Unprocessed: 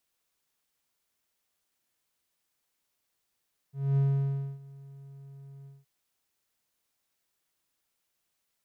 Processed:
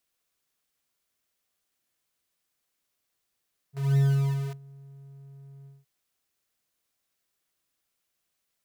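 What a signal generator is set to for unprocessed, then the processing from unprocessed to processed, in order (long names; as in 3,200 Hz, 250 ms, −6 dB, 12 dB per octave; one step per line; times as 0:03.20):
note with an ADSR envelope triangle 138 Hz, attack 240 ms, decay 615 ms, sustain −24 dB, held 1.93 s, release 190 ms −19 dBFS
notch filter 900 Hz, Q 11
in parallel at −5.5 dB: bit reduction 6 bits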